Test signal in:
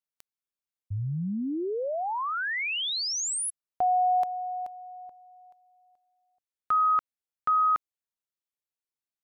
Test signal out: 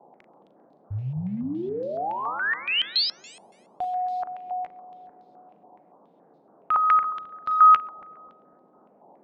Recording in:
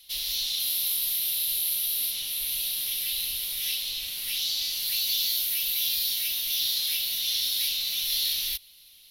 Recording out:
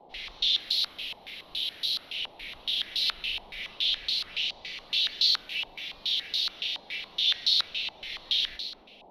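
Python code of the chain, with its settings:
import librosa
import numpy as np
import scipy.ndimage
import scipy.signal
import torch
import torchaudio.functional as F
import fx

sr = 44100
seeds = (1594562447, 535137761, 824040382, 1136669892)

y = fx.rider(x, sr, range_db=4, speed_s=2.0)
y = fx.quant_companded(y, sr, bits=8)
y = fx.dmg_noise_band(y, sr, seeds[0], low_hz=170.0, high_hz=790.0, level_db=-56.0)
y = fx.doubler(y, sr, ms=39.0, db=-10.0)
y = fx.echo_split(y, sr, split_hz=500.0, low_ms=257, high_ms=132, feedback_pct=52, wet_db=-12)
y = fx.filter_held_lowpass(y, sr, hz=7.1, low_hz=880.0, high_hz=4200.0)
y = y * 10.0 ** (-3.5 / 20.0)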